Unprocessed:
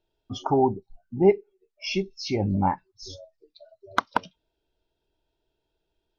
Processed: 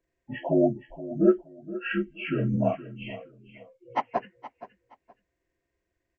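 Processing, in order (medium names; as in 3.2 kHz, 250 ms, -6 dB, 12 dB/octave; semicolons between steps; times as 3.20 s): frequency axis rescaled in octaves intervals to 78%; feedback delay 471 ms, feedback 24%, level -15.5 dB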